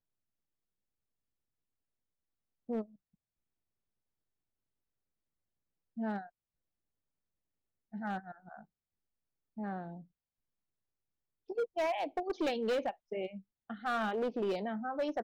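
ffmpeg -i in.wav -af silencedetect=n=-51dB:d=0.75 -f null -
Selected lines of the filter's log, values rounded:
silence_start: 0.00
silence_end: 2.69 | silence_duration: 2.69
silence_start: 2.85
silence_end: 5.97 | silence_duration: 3.12
silence_start: 6.29
silence_end: 7.93 | silence_duration: 1.64
silence_start: 8.63
silence_end: 9.57 | silence_duration: 0.94
silence_start: 10.03
silence_end: 11.49 | silence_duration: 1.47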